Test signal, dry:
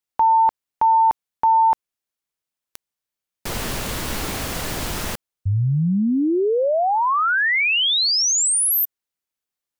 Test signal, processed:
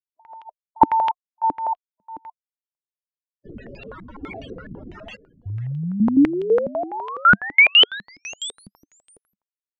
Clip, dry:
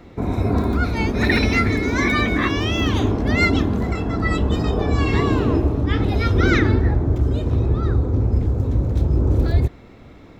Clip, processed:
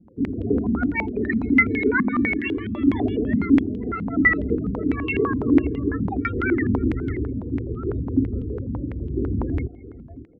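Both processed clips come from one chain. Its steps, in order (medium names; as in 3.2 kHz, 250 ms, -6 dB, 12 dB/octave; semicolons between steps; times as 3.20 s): tilt EQ +2 dB/octave; rotary cabinet horn 0.9 Hz; loudest bins only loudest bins 16; dynamic bell 260 Hz, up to +6 dB, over -41 dBFS, Q 3.2; on a send: delay 566 ms -17 dB; on the sum: step-sequenced low-pass 12 Hz 200–3100 Hz; trim -2.5 dB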